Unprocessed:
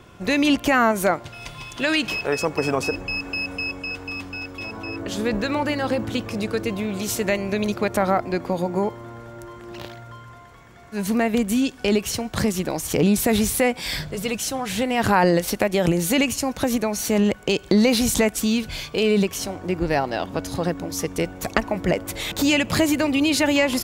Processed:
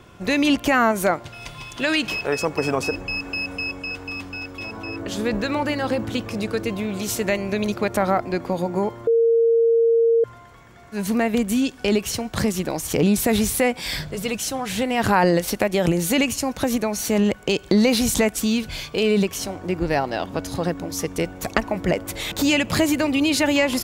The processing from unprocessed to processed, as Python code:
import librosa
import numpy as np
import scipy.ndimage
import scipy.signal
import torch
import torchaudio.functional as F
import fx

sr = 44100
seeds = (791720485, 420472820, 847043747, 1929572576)

y = fx.edit(x, sr, fx.bleep(start_s=9.07, length_s=1.17, hz=460.0, db=-13.5), tone=tone)